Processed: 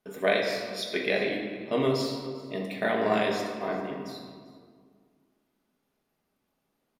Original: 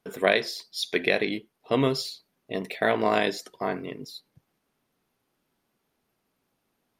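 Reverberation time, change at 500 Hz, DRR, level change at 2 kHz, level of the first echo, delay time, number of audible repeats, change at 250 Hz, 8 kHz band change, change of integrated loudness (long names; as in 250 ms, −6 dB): 2.0 s, −1.0 dB, −1.0 dB, −3.0 dB, −20.0 dB, 394 ms, 1, −1.0 dB, −4.0 dB, −2.0 dB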